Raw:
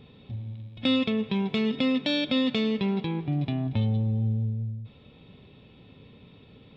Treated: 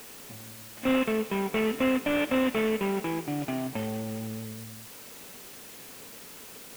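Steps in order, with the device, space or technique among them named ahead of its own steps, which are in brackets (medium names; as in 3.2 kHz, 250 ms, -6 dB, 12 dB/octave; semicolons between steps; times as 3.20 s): army field radio (band-pass 340–3000 Hz; CVSD coder 16 kbps; white noise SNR 16 dB); trim +5 dB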